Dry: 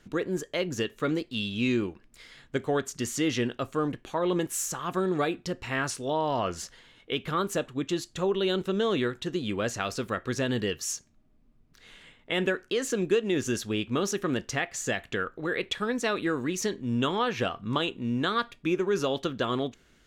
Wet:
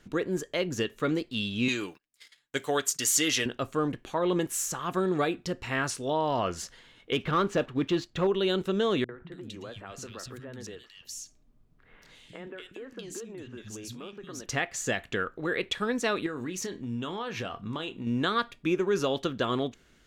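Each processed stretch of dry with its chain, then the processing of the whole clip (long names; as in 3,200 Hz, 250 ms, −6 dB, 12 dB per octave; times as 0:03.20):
0:01.68–0:03.46: noise gate −49 dBFS, range −24 dB + spectral tilt +3.5 dB per octave + comb filter 6.8 ms, depth 42%
0:07.12–0:08.27: low-pass filter 3,600 Hz + leveller curve on the samples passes 1
0:09.04–0:14.46: downward compressor 12 to 1, threshold −36 dBFS + three-band delay without the direct sound lows, mids, highs 50/280 ms, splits 220/2,200 Hz
0:16.26–0:18.07: downward compressor 5 to 1, threshold −31 dBFS + double-tracking delay 26 ms −12.5 dB
whole clip: no processing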